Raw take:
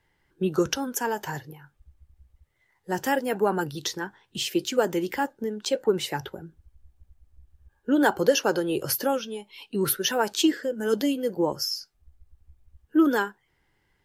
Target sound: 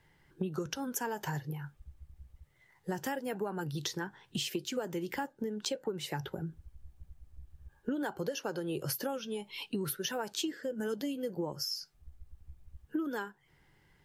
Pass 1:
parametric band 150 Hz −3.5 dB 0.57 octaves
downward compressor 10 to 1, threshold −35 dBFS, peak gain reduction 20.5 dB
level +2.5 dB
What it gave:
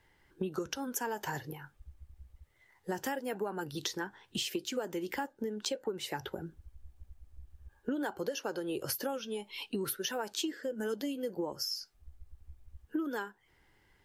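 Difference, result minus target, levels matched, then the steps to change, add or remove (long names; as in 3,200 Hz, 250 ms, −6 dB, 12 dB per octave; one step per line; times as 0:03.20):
125 Hz band −6.0 dB
change: parametric band 150 Hz +7.5 dB 0.57 octaves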